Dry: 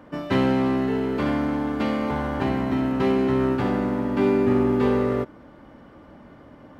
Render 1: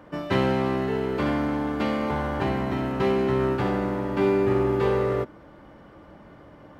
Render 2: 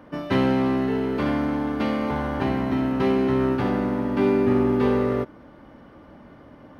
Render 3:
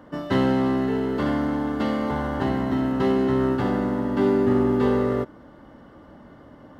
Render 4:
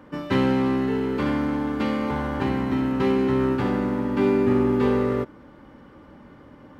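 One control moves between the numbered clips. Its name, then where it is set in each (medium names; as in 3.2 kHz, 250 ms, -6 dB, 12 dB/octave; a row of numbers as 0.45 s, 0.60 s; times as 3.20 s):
band-stop, frequency: 250 Hz, 7.4 kHz, 2.4 kHz, 670 Hz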